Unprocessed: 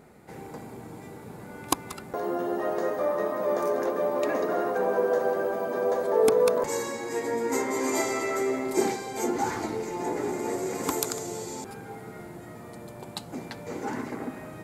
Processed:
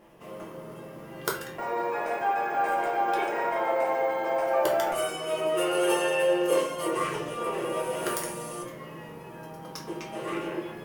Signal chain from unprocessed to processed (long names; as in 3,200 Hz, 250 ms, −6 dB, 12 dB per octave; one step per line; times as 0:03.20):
wrong playback speed 33 rpm record played at 45 rpm
dynamic equaliser 2,800 Hz, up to +4 dB, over −49 dBFS, Q 1.1
rectangular room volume 38 cubic metres, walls mixed, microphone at 0.76 metres
level −6 dB